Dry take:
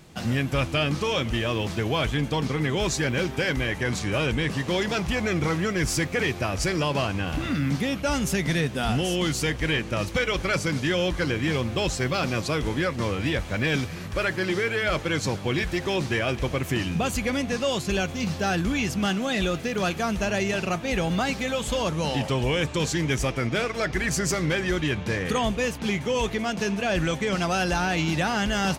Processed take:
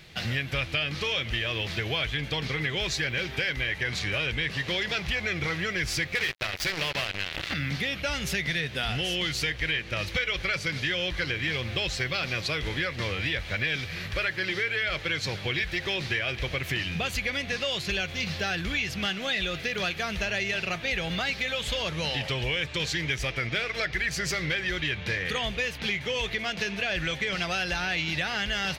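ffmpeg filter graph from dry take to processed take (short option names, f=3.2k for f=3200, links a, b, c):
-filter_complex "[0:a]asettb=1/sr,asplit=3[a][b][c];[a]atrim=end=6.154[d];[b]atrim=start=6.15:end=7.54,asetpts=PTS-STARTPTS,afade=t=in:d=0.004:c=qsin,afade=t=out:st=1.386:d=0.004:c=qsin,highpass=f=90:p=1,bandreject=f=60:t=h:w=6,bandreject=f=120:t=h:w=6,bandreject=f=180:t=h:w=6,bandreject=f=240:t=h:w=6,bandreject=f=300:t=h:w=6,bandreject=f=360:t=h:w=6,bandreject=f=420:t=h:w=6,bandreject=f=480:t=h:w=6,bandreject=f=540:t=h:w=6,acrusher=bits=3:mix=0:aa=0.5[e];[c]atrim=start=7.536[f];[d][e]acrossfade=d=0.004:c1=hsin:c2=qsin[g];[g][f]acrossfade=d=0.004:c1=qsin:c2=hsin,equalizer=f=250:t=o:w=1:g=-9,equalizer=f=1k:t=o:w=1:g=-6,equalizer=f=2k:t=o:w=1:g=8,equalizer=f=4k:t=o:w=1:g=8,equalizer=f=8k:t=o:w=1:g=-7,acompressor=threshold=-27dB:ratio=3"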